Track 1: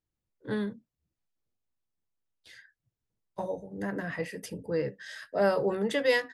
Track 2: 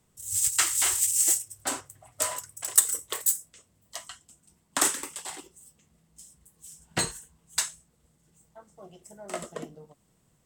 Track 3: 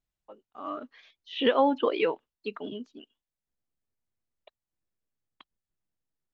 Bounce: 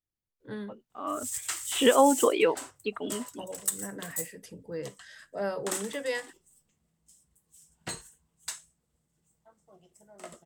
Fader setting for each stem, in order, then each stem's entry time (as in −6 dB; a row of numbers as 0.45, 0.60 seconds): −7.0, −10.0, +2.5 decibels; 0.00, 0.90, 0.40 seconds